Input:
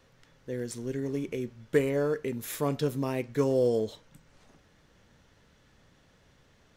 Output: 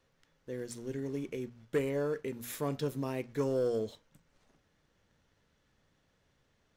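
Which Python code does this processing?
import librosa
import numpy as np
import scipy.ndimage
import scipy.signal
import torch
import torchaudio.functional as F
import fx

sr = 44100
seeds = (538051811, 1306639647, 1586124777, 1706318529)

y = fx.leveller(x, sr, passes=1)
y = fx.hum_notches(y, sr, base_hz=60, count=4)
y = y * 10.0 ** (-8.5 / 20.0)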